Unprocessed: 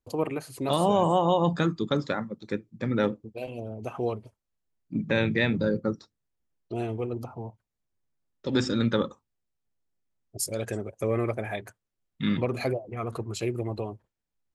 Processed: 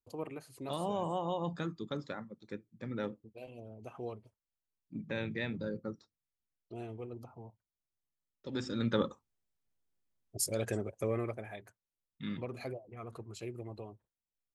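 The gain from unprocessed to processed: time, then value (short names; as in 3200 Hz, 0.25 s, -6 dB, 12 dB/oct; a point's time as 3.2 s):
8.62 s -12.5 dB
9.07 s -3 dB
10.86 s -3 dB
11.51 s -13 dB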